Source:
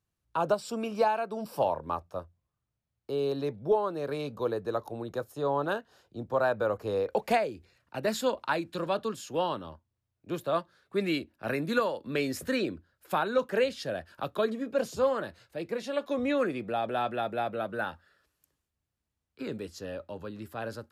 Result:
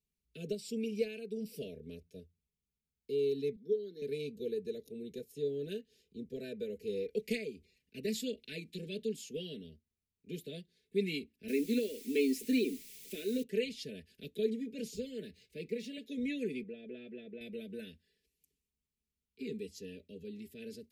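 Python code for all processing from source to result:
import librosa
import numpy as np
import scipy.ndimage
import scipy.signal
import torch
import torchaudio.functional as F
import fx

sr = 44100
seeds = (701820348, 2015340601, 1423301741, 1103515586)

y = fx.chain(x, sr, fx.highpass(hz=220.0, slope=24),
    fx.fixed_phaser(hz=2600.0, stages=6), at=(3.56, 4.02))
y = fx.chain(y, sr, fx.low_shelf_res(hz=190.0, db=-12.0, q=3.0),
    fx.quant_dither(seeds[0], bits=8, dither='triangular'), at=(11.48, 13.43))
y = fx.chain(y, sr, fx.median_filter(points=3),
    fx.band_squash(depth_pct=40), at=(14.95, 15.98))
y = fx.chain(y, sr, fx.lowpass(hz=1400.0, slope=12),
    fx.tilt_eq(slope=2.0), at=(16.63, 17.41))
y = scipy.signal.sosfilt(scipy.signal.ellip(3, 1.0, 50, [440.0, 2200.0], 'bandstop', fs=sr, output='sos'), y)
y = y + 0.85 * np.pad(y, (int(4.6 * sr / 1000.0), 0))[:len(y)]
y = F.gain(torch.from_numpy(y), -6.5).numpy()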